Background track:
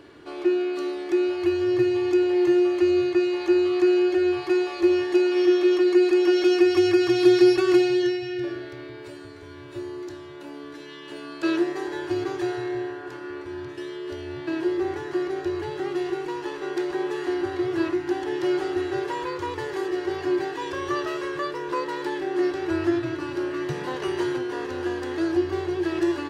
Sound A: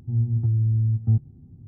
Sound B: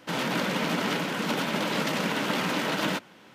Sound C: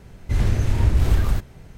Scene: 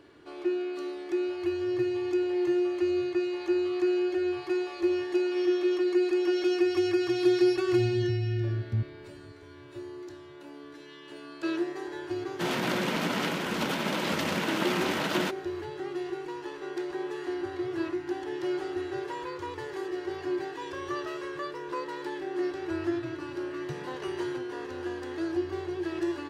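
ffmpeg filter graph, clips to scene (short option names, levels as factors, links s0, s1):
-filter_complex "[0:a]volume=0.447[s0];[1:a]atrim=end=1.67,asetpts=PTS-STARTPTS,volume=0.355,afade=t=in:d=0.004:c=hsin,afade=t=out:st=1.666:d=0.004:c=hsin,adelay=7650[s1];[2:a]atrim=end=3.34,asetpts=PTS-STARTPTS,volume=0.794,afade=t=in:d=0.004:c=hsin,afade=t=out:st=3.336:d=0.004:c=hsin,adelay=12320[s2];[s0][s1][s2]amix=inputs=3:normalize=0"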